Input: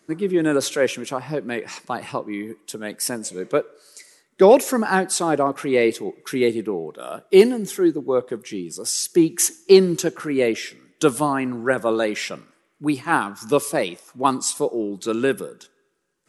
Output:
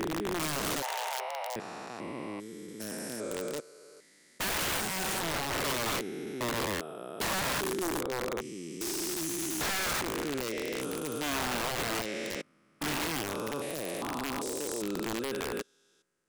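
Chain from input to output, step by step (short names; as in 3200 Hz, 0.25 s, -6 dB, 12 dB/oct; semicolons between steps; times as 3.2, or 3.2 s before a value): stepped spectrum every 0.4 s; wrapped overs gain 21 dB; 0.82–1.56 frequency shift +390 Hz; gain -5.5 dB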